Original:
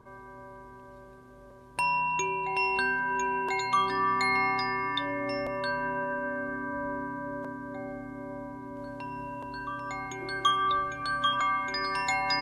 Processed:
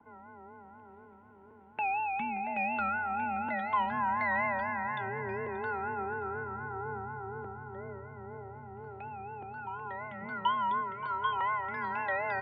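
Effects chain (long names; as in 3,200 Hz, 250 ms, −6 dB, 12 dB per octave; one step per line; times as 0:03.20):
low-shelf EQ 210 Hz −4.5 dB
pitch vibrato 4.1 Hz 88 cents
on a send: tape delay 579 ms, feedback 53%, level −13 dB, low-pass 1,700 Hz
on the sum: single-sideband voice off tune −160 Hz 270–2,800 Hz
level −3.5 dB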